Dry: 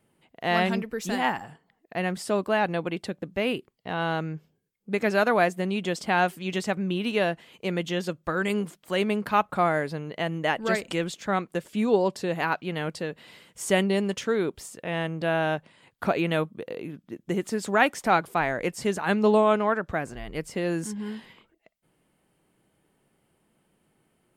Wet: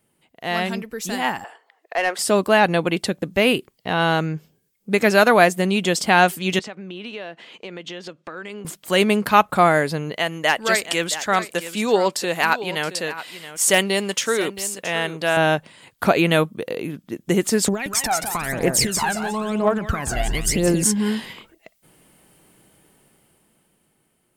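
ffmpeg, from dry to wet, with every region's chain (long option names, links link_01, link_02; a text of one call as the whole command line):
ffmpeg -i in.wav -filter_complex "[0:a]asettb=1/sr,asplit=3[link_01][link_02][link_03];[link_01]atrim=end=1.444[link_04];[link_02]atrim=start=1.44:end=2.19,asetpts=PTS-STARTPTS,afade=type=in:duration=0.004:curve=qsin,afade=type=out:start_time=0.746:duration=0.004:curve=qsin,highpass=frequency=420:width=0.5412,highpass=frequency=420:width=1.3066,asplit=2[link_05][link_06];[link_06]highpass=frequency=720:poles=1,volume=13dB,asoftclip=type=tanh:threshold=-15.5dB[link_07];[link_05][link_07]amix=inputs=2:normalize=0,lowpass=frequency=1700:poles=1,volume=-6dB[link_08];[link_03]atrim=start=2.186[link_09];[link_04][link_08]acrossfade=duration=0.004:curve1=hsin:curve2=qsin[link_10];[link_10][link_09]acrossfade=duration=0.004:curve1=qsin:curve2=hsin,asettb=1/sr,asplit=3[link_11][link_12][link_13];[link_11]atrim=end=6.594[link_14];[link_12]atrim=start=6.59:end=8.65,asetpts=PTS-STARTPTS,afade=type=in:duration=0.004:curve=qsin,afade=type=out:start_time=2.056:duration=0.004:curve=qsin,highpass=240,lowpass=4100,acompressor=threshold=-41dB:ratio=4:attack=3.2:release=140:knee=1:detection=peak[link_15];[link_13]atrim=start=8.646[link_16];[link_14][link_15]acrossfade=duration=0.004:curve1=hsin:curve2=qsin[link_17];[link_17][link_16]acrossfade=duration=0.004:curve1=qsin:curve2=hsin,asettb=1/sr,asplit=3[link_18][link_19][link_20];[link_18]atrim=end=10.164[link_21];[link_19]atrim=start=10.16:end=15.37,asetpts=PTS-STARTPTS,afade=type=in:duration=0.004:curve=qsin,afade=type=out:start_time=5.206:duration=0.004:curve=qsin,lowshelf=frequency=380:gain=-11.5,asoftclip=type=hard:threshold=-15dB,aecho=1:1:672:0.211,atrim=end_sample=229761[link_22];[link_20]atrim=start=15.366[link_23];[link_21][link_22]acrossfade=duration=0.004:curve1=hsin:curve2=qsin[link_24];[link_24][link_23]acrossfade=duration=0.004:curve1=qsin:curve2=hsin,asettb=1/sr,asplit=3[link_25][link_26][link_27];[link_25]atrim=end=17.684[link_28];[link_26]atrim=start=17.68:end=20.83,asetpts=PTS-STARTPTS,afade=type=in:duration=0.004:curve=qsin,afade=type=out:start_time=3.146:duration=0.004:curve=qsin,acompressor=threshold=-34dB:ratio=16:attack=3.2:release=140:knee=1:detection=peak,aecho=1:1:178|356|534|712:0.473|0.147|0.0455|0.0141,atrim=end_sample=138915,aphaser=in_gain=1:out_gain=1:delay=1.5:decay=0.71:speed=1:type=triangular[link_29];[link_27]atrim=start=20.826[link_30];[link_28][link_29]acrossfade=duration=0.004:curve1=hsin:curve2=qsin[link_31];[link_31][link_30]acrossfade=duration=0.004:curve1=qsin:curve2=hsin,highshelf=frequency=4100:gain=9.5,dynaudnorm=framelen=190:gausssize=17:maxgain=14.5dB,volume=-1dB" out.wav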